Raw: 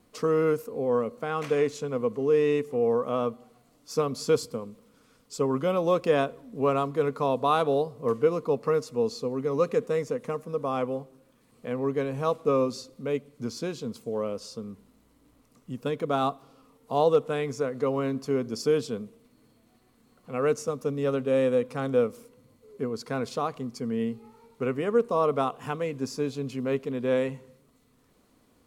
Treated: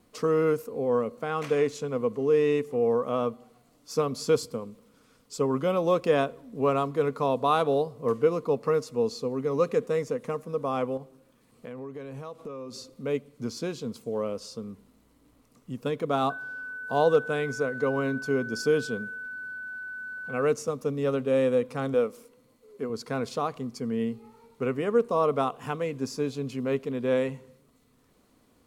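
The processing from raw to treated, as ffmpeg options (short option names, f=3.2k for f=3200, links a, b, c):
-filter_complex "[0:a]asettb=1/sr,asplit=3[a][b][c];[a]atrim=end=10.974[d];[b]atrim=start=10.97:end=12.94,asetpts=PTS-STARTPTS,afade=t=in:d=0.004:c=qsin,afade=t=out:st=1.966:d=0.004:c=qsin,acompressor=threshold=-36dB:ratio=6:attack=3.2:release=140:knee=1:detection=peak[e];[c]atrim=start=12.936[f];[d][e]acrossfade=d=0.004:c1=hsin:c2=qsin[g];[g][f]acrossfade=d=0.004:c1=qsin:c2=hsin,asettb=1/sr,asplit=3[h][i][j];[h]atrim=end=16.304[k];[i]atrim=start=16.3:end=20.42,asetpts=PTS-STARTPTS,afade=t=in:d=0.004:c=qsin,afade=t=out:st=4.116:d=0.004:c=qsin,aeval=exprs='val(0)+0.0178*sin(2*PI*1500*n/s)':c=same[l];[j]atrim=start=20.416[m];[k][l]acrossfade=d=0.004:c1=hsin:c2=qsin[n];[n][m]acrossfade=d=0.004:c1=qsin:c2=hsin,asettb=1/sr,asplit=3[o][p][q];[o]atrim=end=21.944[r];[p]atrim=start=21.94:end=22.9,asetpts=PTS-STARTPTS,afade=t=in:d=0.004:c=qsin,afade=t=out:st=0.956:d=0.004:c=qsin,equalizer=f=80:t=o:w=2.1:g=-12[s];[q]atrim=start=22.896[t];[r][s]acrossfade=d=0.004:c1=hsin:c2=qsin[u];[u][t]acrossfade=d=0.004:c1=qsin:c2=hsin"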